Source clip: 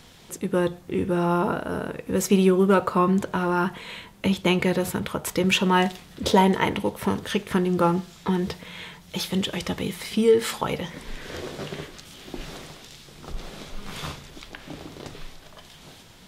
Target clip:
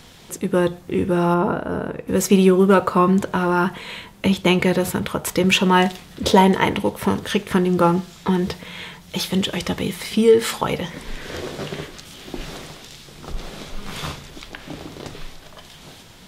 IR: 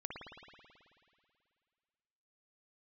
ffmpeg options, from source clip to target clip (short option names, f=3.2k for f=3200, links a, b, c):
-filter_complex "[0:a]asettb=1/sr,asplit=3[a][b][c];[a]atrim=end=1.344[d];[b]atrim=start=1.34:end=2.08,asetpts=PTS-STARTPTS,afade=t=in:d=0.004:c=qsin,afade=t=out:st=0.736:d=0.004:c=qsin,highshelf=f=2.5k:g=-10.5[e];[c]atrim=start=2.076[f];[d][e]acrossfade=d=0.004:c1=hsin:c2=qsin[g];[g][f]acrossfade=d=0.004:c1=qsin:c2=hsin,volume=4.5dB"